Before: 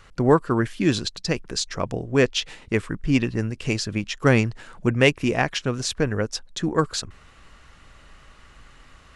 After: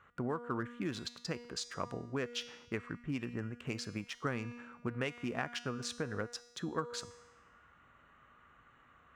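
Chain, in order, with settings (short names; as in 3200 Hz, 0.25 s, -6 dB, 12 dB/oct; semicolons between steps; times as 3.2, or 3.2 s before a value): Wiener smoothing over 9 samples; HPF 89 Hz 12 dB/oct; resonator 240 Hz, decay 1 s, mix 70%; compressor 12:1, threshold -30 dBFS, peak gain reduction 10 dB; bell 1300 Hz +7.5 dB 0.76 oct; gain -3 dB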